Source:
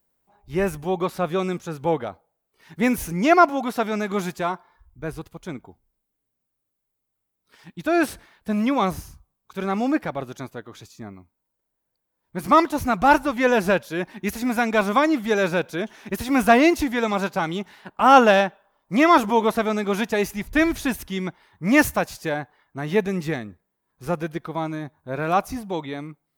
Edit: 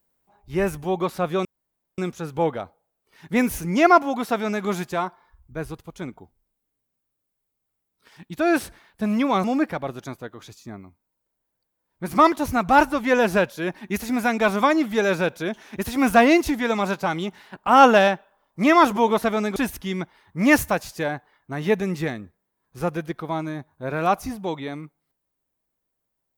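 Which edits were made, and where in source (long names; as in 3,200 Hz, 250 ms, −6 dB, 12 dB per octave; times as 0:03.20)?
0:01.45: splice in room tone 0.53 s
0:08.91–0:09.77: remove
0:19.89–0:20.82: remove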